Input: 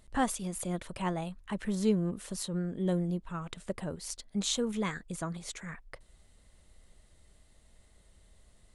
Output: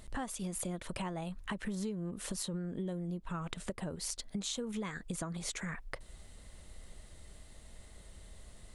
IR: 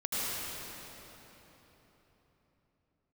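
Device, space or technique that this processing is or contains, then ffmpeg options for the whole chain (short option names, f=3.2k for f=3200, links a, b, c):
serial compression, peaks first: -af "acompressor=threshold=-39dB:ratio=6,acompressor=threshold=-46dB:ratio=2,volume=8dB"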